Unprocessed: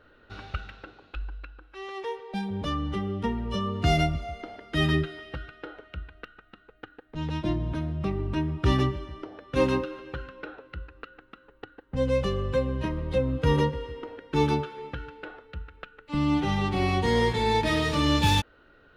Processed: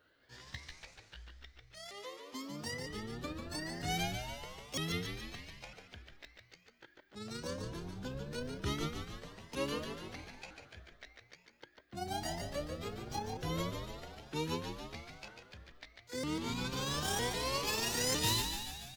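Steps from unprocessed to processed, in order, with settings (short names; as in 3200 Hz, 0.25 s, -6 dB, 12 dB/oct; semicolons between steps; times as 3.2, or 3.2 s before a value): repeated pitch sweeps +10 st, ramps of 0.955 s; HPF 68 Hz; pre-emphasis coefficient 0.8; frequency-shifting echo 0.145 s, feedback 61%, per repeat -60 Hz, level -6.5 dB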